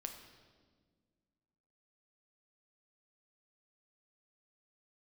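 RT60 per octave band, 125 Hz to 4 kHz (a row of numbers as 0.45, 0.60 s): 2.3, 2.4, 1.9, 1.4, 1.2, 1.3 s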